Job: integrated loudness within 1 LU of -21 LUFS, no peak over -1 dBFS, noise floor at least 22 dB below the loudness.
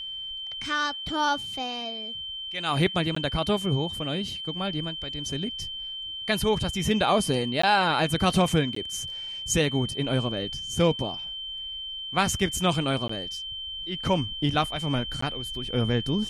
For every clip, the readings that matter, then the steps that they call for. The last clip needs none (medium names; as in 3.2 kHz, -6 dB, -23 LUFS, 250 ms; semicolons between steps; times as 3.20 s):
dropouts 5; longest dropout 14 ms; steady tone 3.1 kHz; tone level -33 dBFS; loudness -27.0 LUFS; peak level -8.5 dBFS; loudness target -21.0 LUFS
-> interpolate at 3.15/7.62/8.75/13.08/15.21 s, 14 ms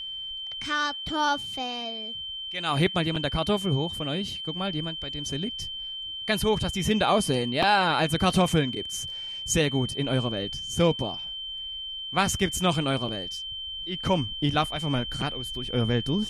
dropouts 0; steady tone 3.1 kHz; tone level -33 dBFS
-> band-stop 3.1 kHz, Q 30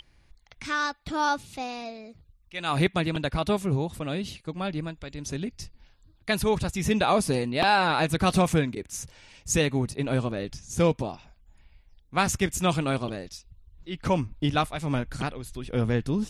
steady tone not found; loudness -27.0 LUFS; peak level -8.5 dBFS; loudness target -21.0 LUFS
-> trim +6 dB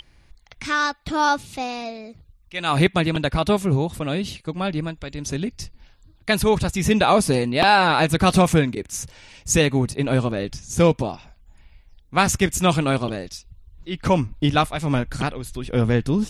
loudness -21.0 LUFS; peak level -2.5 dBFS; noise floor -55 dBFS